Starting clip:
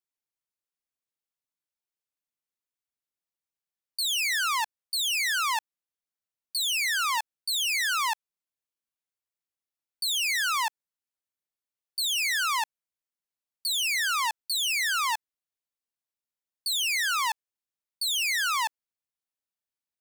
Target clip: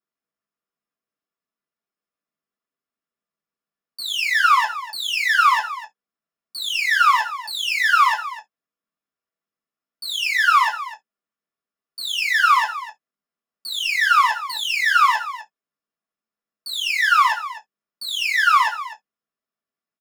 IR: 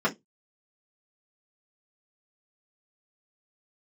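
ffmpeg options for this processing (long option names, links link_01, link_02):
-filter_complex "[0:a]asplit=2[link_01][link_02];[link_02]acrusher=bits=5:mix=0:aa=0.5,volume=-5.5dB[link_03];[link_01][link_03]amix=inputs=2:normalize=0,aecho=1:1:59|78|252:0.119|0.141|0.188[link_04];[1:a]atrim=start_sample=2205,afade=type=out:start_time=0.14:duration=0.01,atrim=end_sample=6615[link_05];[link_04][link_05]afir=irnorm=-1:irlink=0,volume=-6dB"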